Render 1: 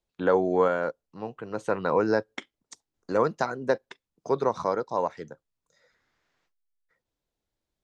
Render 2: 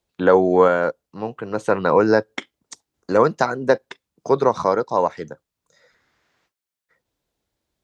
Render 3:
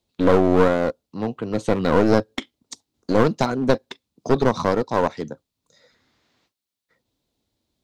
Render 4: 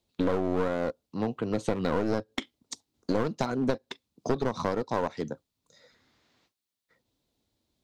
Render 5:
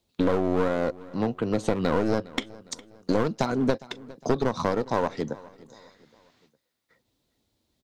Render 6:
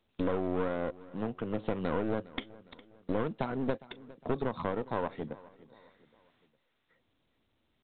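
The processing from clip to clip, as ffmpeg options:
-af "highpass=43,volume=8dB"
-af "equalizer=f=100:t=o:w=0.67:g=5,equalizer=f=250:t=o:w=0.67:g=8,equalizer=f=1.6k:t=o:w=0.67:g=-5,equalizer=f=4k:t=o:w=0.67:g=6,aeval=exprs='clip(val(0),-1,0.0891)':c=same"
-af "acompressor=threshold=-22dB:ratio=4,volume=-2dB"
-af "aecho=1:1:409|818|1227:0.0944|0.0397|0.0167,volume=3.5dB"
-af "aeval=exprs='clip(val(0),-1,0.0376)':c=same,volume=-7.5dB" -ar 8000 -c:a pcm_mulaw

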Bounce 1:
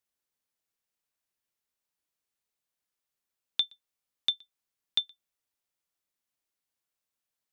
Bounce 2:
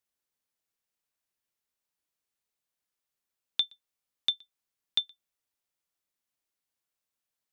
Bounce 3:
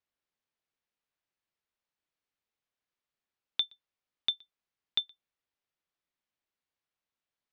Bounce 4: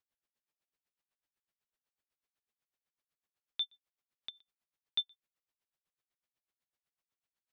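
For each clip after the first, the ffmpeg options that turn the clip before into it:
-af anull
-af "lowpass=3.9k"
-af "aeval=exprs='val(0)*pow(10,-26*(0.5-0.5*cos(2*PI*8*n/s))/20)':c=same,volume=2dB"

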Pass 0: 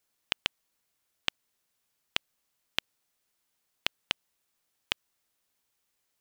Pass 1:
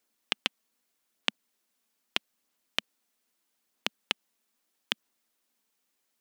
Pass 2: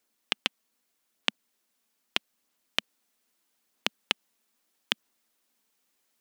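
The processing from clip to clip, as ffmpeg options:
-af "aphaser=in_gain=1:out_gain=1:delay=4.6:decay=0.25:speed=0.79:type=sinusoidal,lowshelf=f=170:t=q:w=3:g=-8"
-af "dynaudnorm=f=620:g=3:m=3dB,volume=1dB"

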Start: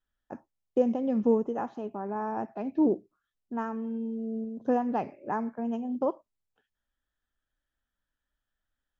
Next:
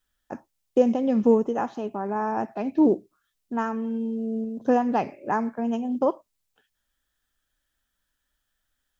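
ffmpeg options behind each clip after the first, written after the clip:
-af "highshelf=f=2.4k:g=9,volume=5dB"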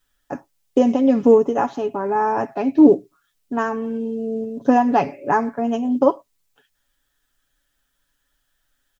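-af "aecho=1:1:7.1:0.61,volume=5.5dB"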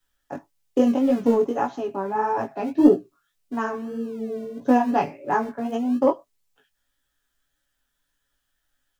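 -filter_complex "[0:a]aeval=exprs='0.891*(cos(1*acos(clip(val(0)/0.891,-1,1)))-cos(1*PI/2))+0.0447*(cos(3*acos(clip(val(0)/0.891,-1,1)))-cos(3*PI/2))':c=same,acrossover=split=150|790[a][b][c];[a]acrusher=samples=41:mix=1:aa=0.000001:lfo=1:lforange=24.6:lforate=0.95[d];[d][b][c]amix=inputs=3:normalize=0,flanger=delay=16:depth=5.1:speed=1.7"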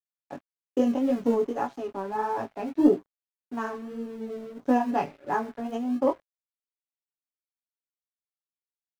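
-af "aeval=exprs='sgn(val(0))*max(abs(val(0))-0.00531,0)':c=same,volume=-4.5dB"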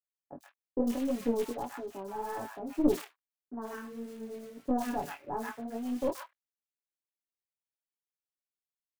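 -filter_complex "[0:a]acrusher=bits=4:mode=log:mix=0:aa=0.000001,aeval=exprs='(tanh(3.98*val(0)+0.65)-tanh(0.65))/3.98':c=same,acrossover=split=1100|3900[a][b][c];[c]adelay=100[d];[b]adelay=130[e];[a][e][d]amix=inputs=3:normalize=0,volume=-3dB"

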